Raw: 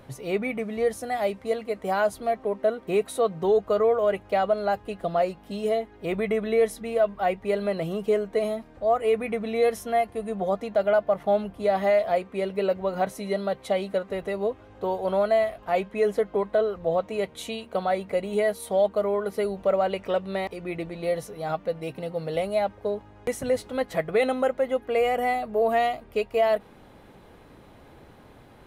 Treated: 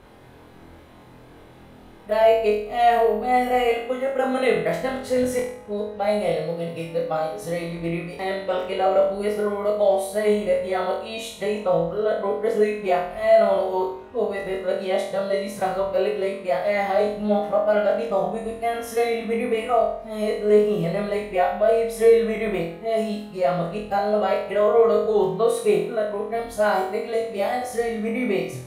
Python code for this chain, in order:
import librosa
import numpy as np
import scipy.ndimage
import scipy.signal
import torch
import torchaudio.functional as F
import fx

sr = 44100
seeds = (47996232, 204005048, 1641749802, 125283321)

y = np.flip(x).copy()
y = fx.room_flutter(y, sr, wall_m=4.1, rt60_s=0.6)